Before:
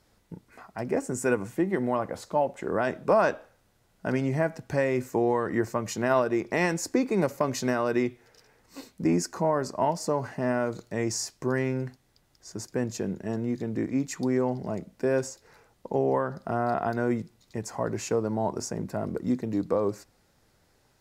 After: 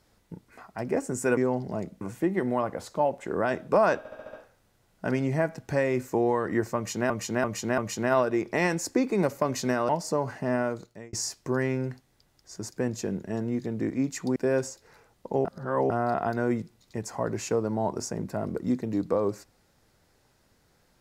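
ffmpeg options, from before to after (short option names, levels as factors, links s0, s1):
-filter_complex "[0:a]asplit=16[s0][s1][s2][s3][s4][s5][s6][s7][s8][s9][s10][s11][s12][s13][s14][s15];[s0]atrim=end=1.372[s16];[s1]atrim=start=14.318:end=14.962[s17];[s2]atrim=start=1.368:end=3.412[s18];[s3]atrim=start=3.338:end=3.412[s19];[s4]atrim=start=3.338:end=3.412[s20];[s5]atrim=start=3.338:end=3.412[s21];[s6]atrim=start=3.338:end=3.412[s22];[s7]atrim=start=3.338:end=6.112[s23];[s8]atrim=start=5.768:end=6.112[s24];[s9]atrim=start=5.768:end=6.112[s25];[s10]atrim=start=5.768:end=7.882[s26];[s11]atrim=start=9.848:end=11.09,asetpts=PTS-STARTPTS,afade=t=out:st=0.722:d=0.52[s27];[s12]atrim=start=11.09:end=14.322,asetpts=PTS-STARTPTS,afade=t=in:d=0.004:c=hsin[s28];[s13]atrim=start=14.958:end=16.052[s29];[s14]atrim=start=16.048:end=16.502,asetpts=PTS-STARTPTS,areverse[s30];[s15]atrim=start=16.498[s31];[s16][s17]acrossfade=d=0.004:c1=hsin:c2=hsin[s32];[s32][s18]acrossfade=d=0.004:c1=hsin:c2=hsin[s33];[s33][s19]acrossfade=d=0.004:c1=hsin:c2=hsin[s34];[s34][s20]acrossfade=d=0.004:c1=hsin:c2=hsin[s35];[s35][s21]acrossfade=d=0.004:c1=hsin:c2=hsin[s36];[s36][s22]acrossfade=d=0.004:c1=hsin:c2=hsin[s37];[s37][s23]acrossfade=d=0.004:c1=hsin:c2=hsin[s38];[s38][s24]acrossfade=d=0.004:c1=hsin:c2=hsin[s39];[s39][s25]acrossfade=d=0.004:c1=hsin:c2=hsin[s40];[s40][s26]acrossfade=d=0.004:c1=hsin:c2=hsin[s41];[s27][s28]concat=n=2:v=0:a=1[s42];[s41][s42]acrossfade=d=0.004:c1=hsin:c2=hsin[s43];[s43][s29]acrossfade=d=0.004:c1=hsin:c2=hsin[s44];[s44][s30]acrossfade=d=0.004:c1=hsin:c2=hsin[s45];[s45][s31]acrossfade=d=0.004:c1=hsin:c2=hsin"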